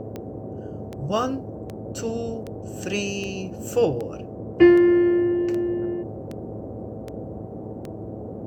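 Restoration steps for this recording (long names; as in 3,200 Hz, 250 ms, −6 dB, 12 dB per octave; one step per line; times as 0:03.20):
click removal
hum removal 108.1 Hz, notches 7
noise reduction from a noise print 30 dB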